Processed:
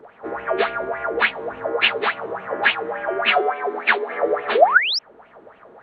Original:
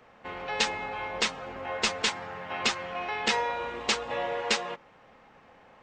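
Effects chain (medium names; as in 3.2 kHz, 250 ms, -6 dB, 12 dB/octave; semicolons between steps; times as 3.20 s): frequency axis rescaled in octaves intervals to 81%; 3.40–4.23 s: Chebyshev high-pass 180 Hz, order 10; 4.55–4.99 s: painted sound rise 420–5700 Hz -23 dBFS; in parallel at -1.5 dB: compression, threshold -39 dBFS, peak gain reduction 16 dB; on the sum: sweeping bell 3.5 Hz 320–2800 Hz +17 dB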